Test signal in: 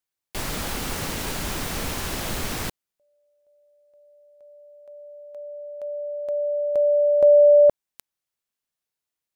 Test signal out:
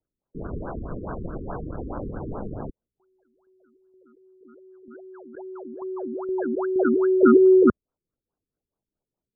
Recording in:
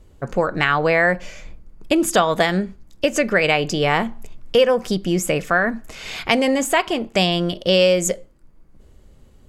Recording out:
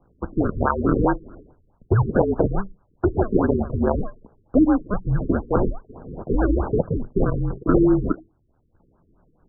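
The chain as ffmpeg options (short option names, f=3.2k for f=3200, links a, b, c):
-af "acrusher=samples=29:mix=1:aa=0.000001:lfo=1:lforange=29:lforate=2.5,highpass=f=160:t=q:w=0.5412,highpass=f=160:t=q:w=1.307,lowpass=f=2.5k:t=q:w=0.5176,lowpass=f=2.5k:t=q:w=0.7071,lowpass=f=2.5k:t=q:w=1.932,afreqshift=-210,afftfilt=real='re*lt(b*sr/1024,440*pow(1700/440,0.5+0.5*sin(2*PI*4.7*pts/sr)))':imag='im*lt(b*sr/1024,440*pow(1700/440,0.5+0.5*sin(2*PI*4.7*pts/sr)))':win_size=1024:overlap=0.75"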